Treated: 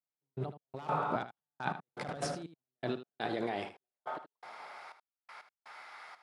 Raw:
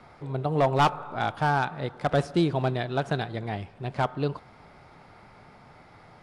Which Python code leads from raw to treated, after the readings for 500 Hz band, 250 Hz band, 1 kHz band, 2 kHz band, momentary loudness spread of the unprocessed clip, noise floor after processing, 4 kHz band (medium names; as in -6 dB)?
-11.5 dB, -12.0 dB, -11.0 dB, -10.5 dB, 10 LU, under -85 dBFS, -10.5 dB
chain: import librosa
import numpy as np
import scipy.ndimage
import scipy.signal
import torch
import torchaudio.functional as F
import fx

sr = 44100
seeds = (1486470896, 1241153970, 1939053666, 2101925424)

p1 = fx.over_compress(x, sr, threshold_db=-35.0, ratio=-1.0)
p2 = fx.step_gate(p1, sr, bpm=122, pattern='...x..xxxx', floor_db=-60.0, edge_ms=4.5)
p3 = fx.filter_sweep_highpass(p2, sr, from_hz=160.0, to_hz=1200.0, start_s=2.46, end_s=5.17, q=1.0)
p4 = p3 + fx.echo_single(p3, sr, ms=77, db=-12.0, dry=0)
y = p4 * librosa.db_to_amplitude(-1.5)